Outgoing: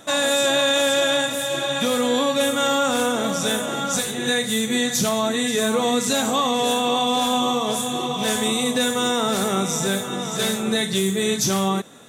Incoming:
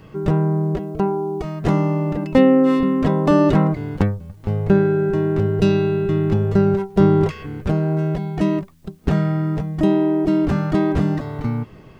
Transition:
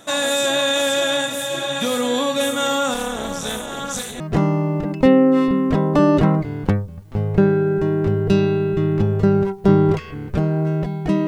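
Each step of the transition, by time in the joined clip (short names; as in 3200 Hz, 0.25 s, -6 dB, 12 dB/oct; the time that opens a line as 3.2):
outgoing
2.94–4.2 AM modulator 280 Hz, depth 75%
4.2 switch to incoming from 1.52 s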